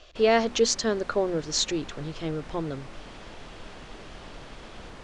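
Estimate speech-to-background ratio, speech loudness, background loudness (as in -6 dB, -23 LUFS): 19.0 dB, -26.5 LUFS, -45.5 LUFS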